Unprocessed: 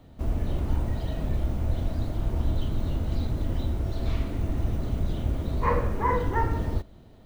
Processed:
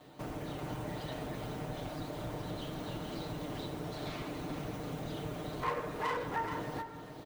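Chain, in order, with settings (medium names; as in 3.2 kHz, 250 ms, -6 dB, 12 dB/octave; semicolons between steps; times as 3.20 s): comb filter that takes the minimum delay 6.6 ms; high-pass 440 Hz 6 dB/octave; compression 2:1, threshold -46 dBFS, peak gain reduction 13 dB; delay 426 ms -8 dB; trim +4.5 dB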